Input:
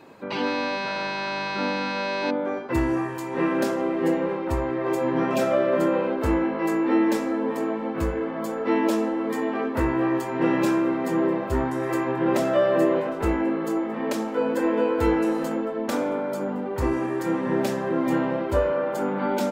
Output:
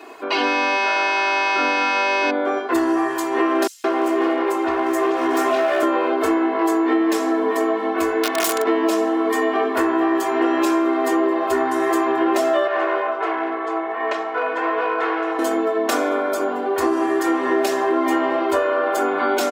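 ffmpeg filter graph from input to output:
ffmpeg -i in.wav -filter_complex "[0:a]asettb=1/sr,asplit=3[link_01][link_02][link_03];[link_01]atrim=end=3.674[link_04];[link_02]atrim=start=3.67:end=5.83,asetpts=PTS-STARTPTS,afade=type=in:duration=0.004:curve=qsin,afade=type=out:start_time=2.156:duration=0.004:curve=qsin,asoftclip=type=hard:threshold=-21.5dB,acrossover=split=4600[link_05][link_06];[link_05]adelay=170[link_07];[link_07][link_06]amix=inputs=2:normalize=0,atrim=end_sample=95256[link_08];[link_03]atrim=start=5.826[link_09];[link_04][link_08]acrossfade=duration=0.004:curve1=hsin:curve2=qsin[link_10];[link_10][link_09]acrossfade=duration=0.004:curve1=qsin:curve2=hsin,asettb=1/sr,asplit=3[link_11][link_12][link_13];[link_11]atrim=end=8.234[link_14];[link_12]atrim=start=8.23:end=8.64,asetpts=PTS-STARTPTS,afade=type=in:duration=0.004:curve=qsin,afade=type=out:start_time=0.406:duration=0.004:curve=qsin,equalizer=frequency=12000:width_type=o:width=3:gain=11,bandreject=frequency=60:width_type=h:width=6,bandreject=frequency=120:width_type=h:width=6,bandreject=frequency=180:width_type=h:width=6,bandreject=frequency=240:width_type=h:width=6,bandreject=frequency=300:width_type=h:width=6,bandreject=frequency=360:width_type=h:width=6,bandreject=frequency=420:width_type=h:width=6,bandreject=frequency=480:width_type=h:width=6,bandreject=frequency=540:width_type=h:width=6,aeval=exprs='(mod(10.6*val(0)+1,2)-1)/10.6':channel_layout=same[link_15];[link_13]atrim=start=8.636[link_16];[link_14][link_15]acrossfade=duration=0.004:curve1=hsin:curve2=qsin[link_17];[link_17][link_16]acrossfade=duration=0.004:curve1=qsin:curve2=hsin,asettb=1/sr,asplit=3[link_18][link_19][link_20];[link_18]atrim=end=12.674[link_21];[link_19]atrim=start=12.67:end=15.39,asetpts=PTS-STARTPTS,afade=type=in:duration=0.004:curve=qsin,afade=type=out:start_time=2.716:duration=0.004:curve=qsin,volume=19.5dB,asoftclip=hard,volume=-19.5dB,highpass=610,lowpass=2300[link_22];[link_20]atrim=start=15.386[link_23];[link_21][link_22]acrossfade=duration=0.004:curve1=hsin:curve2=qsin[link_24];[link_24][link_23]acrossfade=duration=0.004:curve1=qsin:curve2=hsin,highpass=440,aecho=1:1:2.8:0.89,acompressor=threshold=-24dB:ratio=6,volume=9dB" out.wav

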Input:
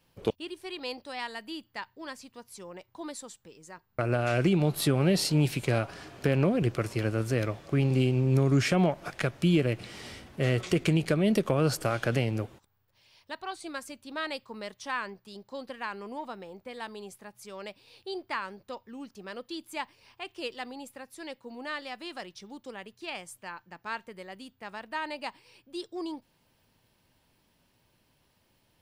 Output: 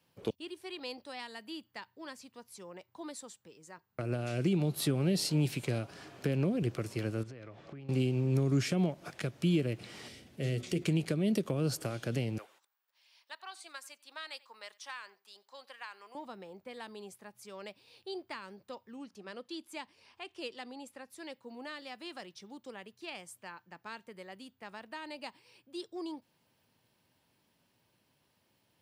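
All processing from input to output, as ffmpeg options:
ffmpeg -i in.wav -filter_complex "[0:a]asettb=1/sr,asplit=3[link_01][link_02][link_03];[link_01]atrim=end=7.234[link_04];[link_02]atrim=start=7.23:end=7.89,asetpts=PTS-STARTPTS,afade=type=in:duration=0.004:curve=qsin,afade=type=out:start_time=0.656:duration=0.004:curve=qsin,lowpass=4400,acompressor=threshold=-38dB:ratio=16:attack=3.2:release=140:knee=1:detection=peak[link_05];[link_03]atrim=start=7.886[link_06];[link_04][link_05]acrossfade=duration=0.004:curve1=hsin:curve2=qsin[link_07];[link_07][link_06]acrossfade=duration=0.004:curve1=qsin:curve2=hsin,asettb=1/sr,asplit=3[link_08][link_09][link_10];[link_08]atrim=end=10.084[link_11];[link_09]atrim=start=10.08:end=10.82,asetpts=PTS-STARTPTS,afade=type=in:duration=0.004:curve=qsin,afade=type=out:start_time=0.736:duration=0.004:curve=qsin,equalizer=frequency=1100:width=1:gain=-11.5,bandreject=frequency=50:width_type=h:width=6,bandreject=frequency=100:width_type=h:width=6,bandreject=frequency=150:width_type=h:width=6,bandreject=frequency=200:width_type=h:width=6,bandreject=frequency=250:width_type=h:width=6,bandreject=frequency=300:width_type=h:width=6,bandreject=frequency=350:width_type=h:width=6,bandreject=frequency=400:width_type=h:width=6[link_12];[link_10]atrim=start=10.816[link_13];[link_11][link_12]acrossfade=duration=0.004:curve1=hsin:curve2=qsin[link_14];[link_14][link_13]acrossfade=duration=0.004:curve1=qsin:curve2=hsin,asettb=1/sr,asplit=3[link_15][link_16][link_17];[link_15]atrim=end=12.384[link_18];[link_16]atrim=start=12.38:end=16.15,asetpts=PTS-STARTPTS,afade=type=in:duration=0.004:curve=qsin,afade=type=out:start_time=3.766:duration=0.004:curve=qsin,highpass=930,aecho=1:1:90:0.0631,atrim=end_sample=166257[link_19];[link_17]atrim=start=16.146[link_20];[link_18][link_19]acrossfade=duration=0.004:curve1=hsin:curve2=qsin[link_21];[link_21][link_20]acrossfade=duration=0.004:curve1=qsin:curve2=hsin,asettb=1/sr,asplit=3[link_22][link_23][link_24];[link_22]atrim=end=18.964[link_25];[link_23]atrim=start=18.96:end=21.1,asetpts=PTS-STARTPTS,afade=type=in:duration=0.004:curve=qsin,afade=type=out:start_time=2.136:duration=0.004:curve=qsin,lowpass=11000,acompressor=mode=upward:threshold=-53dB:ratio=2.5:attack=3.2:release=140:knee=2.83:detection=peak,bandreject=frequency=60:width_type=h:width=6,bandreject=frequency=120:width_type=h:width=6,bandreject=frequency=180:width_type=h:width=6[link_26];[link_24]atrim=start=21.096[link_27];[link_25][link_26]acrossfade=duration=0.004:curve1=hsin:curve2=qsin[link_28];[link_28][link_27]acrossfade=duration=0.004:curve1=qsin:curve2=hsin,highpass=100,acrossover=split=460|3000[link_29][link_30][link_31];[link_30]acompressor=threshold=-39dB:ratio=6[link_32];[link_29][link_32][link_31]amix=inputs=3:normalize=0,volume=-4dB" out.wav

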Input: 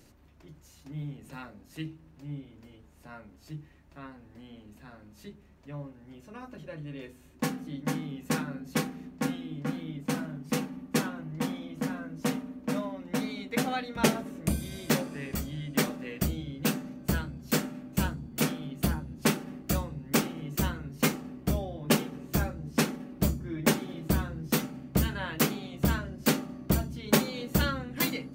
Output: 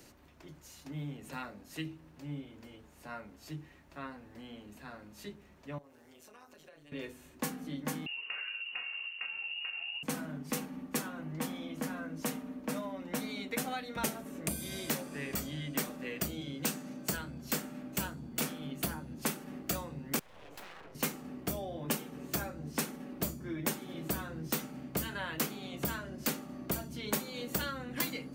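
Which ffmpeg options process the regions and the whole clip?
ffmpeg -i in.wav -filter_complex "[0:a]asettb=1/sr,asplit=3[link_01][link_02][link_03];[link_01]atrim=end=5.784[link_04];[link_02]atrim=start=5.78:end=6.92,asetpts=PTS-STARTPTS,afade=type=in:duration=0.004:curve=qsin,afade=type=out:start_time=1.136:duration=0.004:curve=qsin,bass=frequency=250:gain=-11,treble=frequency=4000:gain=9,tremolo=f=160:d=0.71,acompressor=threshold=-55dB:ratio=6:attack=3.2:release=140:knee=1:detection=peak[link_05];[link_03]atrim=start=6.916[link_06];[link_04][link_05]acrossfade=duration=0.004:curve1=hsin:curve2=qsin[link_07];[link_07][link_06]acrossfade=duration=0.004:curve1=qsin:curve2=hsin,asettb=1/sr,asplit=3[link_08][link_09][link_10];[link_08]atrim=end=8.064[link_11];[link_09]atrim=start=8.06:end=10.03,asetpts=PTS-STARTPTS,afade=type=in:duration=0.004:curve=qsin,afade=type=out:start_time=1.966:duration=0.004:curve=qsin,aemphasis=mode=reproduction:type=50fm,acompressor=threshold=-39dB:ratio=4:attack=3.2:release=140:knee=1:detection=peak,lowpass=frequency=2600:width_type=q:width=0.5098,lowpass=frequency=2600:width_type=q:width=0.6013,lowpass=frequency=2600:width_type=q:width=0.9,lowpass=frequency=2600:width_type=q:width=2.563,afreqshift=-3000[link_12];[link_10]atrim=start=10.026[link_13];[link_11][link_12]acrossfade=duration=0.004:curve1=hsin:curve2=qsin[link_14];[link_14][link_13]acrossfade=duration=0.004:curve1=qsin:curve2=hsin,asettb=1/sr,asplit=3[link_15][link_16][link_17];[link_15]atrim=end=16.414[link_18];[link_16]atrim=start=16.41:end=17.17,asetpts=PTS-STARTPTS,afade=type=in:duration=0.004:curve=qsin,afade=type=out:start_time=0.756:duration=0.004:curve=qsin,highpass=98,equalizer=frequency=7200:width_type=o:width=1.6:gain=5[link_19];[link_17]atrim=start=17.166[link_20];[link_18][link_19]acrossfade=duration=0.004:curve1=hsin:curve2=qsin[link_21];[link_21][link_20]acrossfade=duration=0.004:curve1=qsin:curve2=hsin,asettb=1/sr,asplit=3[link_22][link_23][link_24];[link_22]atrim=end=20.194[link_25];[link_23]atrim=start=20.19:end=20.95,asetpts=PTS-STARTPTS,afade=type=in:duration=0.004:curve=qsin,afade=type=out:start_time=0.756:duration=0.004:curve=qsin,bass=frequency=250:gain=-14,treble=frequency=4000:gain=-14,acompressor=threshold=-44dB:ratio=8:attack=3.2:release=140:knee=1:detection=peak,aeval=exprs='abs(val(0))':channel_layout=same[link_26];[link_24]atrim=start=20.946[link_27];[link_25][link_26]acrossfade=duration=0.004:curve1=hsin:curve2=qsin[link_28];[link_28][link_27]acrossfade=duration=0.004:curve1=qsin:curve2=hsin,lowshelf=frequency=210:gain=-9.5,acrossover=split=140|7600[link_29][link_30][link_31];[link_29]acompressor=threshold=-50dB:ratio=4[link_32];[link_30]acompressor=threshold=-40dB:ratio=4[link_33];[link_31]acompressor=threshold=-39dB:ratio=4[link_34];[link_32][link_33][link_34]amix=inputs=3:normalize=0,volume=4dB" out.wav

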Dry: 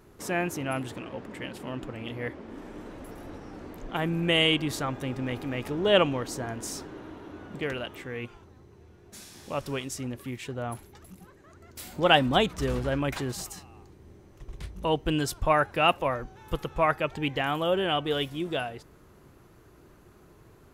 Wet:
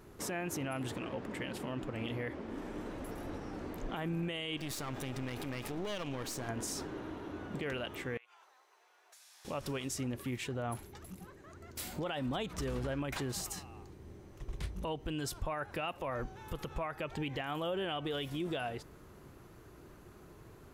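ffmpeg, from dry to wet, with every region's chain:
ffmpeg -i in.wav -filter_complex "[0:a]asettb=1/sr,asplit=3[link_01][link_02][link_03];[link_01]atrim=end=4.574[link_04];[link_02]atrim=start=4.57:end=6.49,asetpts=PTS-STARTPTS,afade=type=in:duration=0.004:curve=qsin,afade=type=out:start_time=1.916:duration=0.004:curve=qsin,highshelf=frequency=2300:gain=7.5,acompressor=threshold=-33dB:ratio=5:attack=3.2:release=140:knee=1:detection=peak,aeval=exprs='clip(val(0),-1,0.00708)':channel_layout=same[link_05];[link_03]atrim=start=6.486[link_06];[link_04][link_05]acrossfade=duration=0.004:curve1=hsin:curve2=qsin[link_07];[link_07][link_06]acrossfade=duration=0.004:curve1=qsin:curve2=hsin,asettb=1/sr,asplit=3[link_08][link_09][link_10];[link_08]atrim=end=8.174[link_11];[link_09]atrim=start=8.17:end=9.45,asetpts=PTS-STARTPTS,afade=type=in:duration=0.004:curve=qsin,afade=type=out:start_time=1.276:duration=0.004:curve=qsin,highpass=frequency=720:width=0.5412,highpass=frequency=720:width=1.3066,acompressor=threshold=-56dB:ratio=10:attack=3.2:release=140:knee=1:detection=peak[link_12];[link_10]atrim=start=9.446[link_13];[link_11][link_12]acrossfade=duration=0.004:curve1=hsin:curve2=qsin[link_14];[link_14][link_13]acrossfade=duration=0.004:curve1=qsin:curve2=hsin,acompressor=threshold=-26dB:ratio=6,alimiter=level_in=4.5dB:limit=-24dB:level=0:latency=1:release=67,volume=-4.5dB" out.wav

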